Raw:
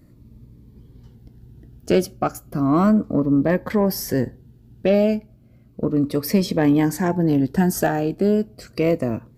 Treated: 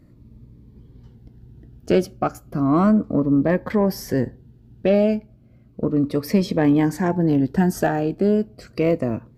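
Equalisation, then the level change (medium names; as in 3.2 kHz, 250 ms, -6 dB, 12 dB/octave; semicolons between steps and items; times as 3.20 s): treble shelf 6 kHz -10 dB; 0.0 dB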